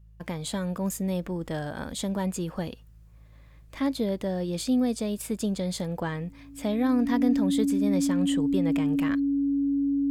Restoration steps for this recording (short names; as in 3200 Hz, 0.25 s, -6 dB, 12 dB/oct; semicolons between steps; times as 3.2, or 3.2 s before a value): de-hum 53.8 Hz, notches 3; notch 280 Hz, Q 30